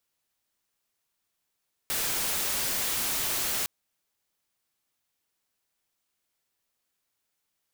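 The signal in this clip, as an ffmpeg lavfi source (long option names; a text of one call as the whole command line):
ffmpeg -f lavfi -i "anoisesrc=color=white:amplitude=0.0614:duration=1.76:sample_rate=44100:seed=1" out.wav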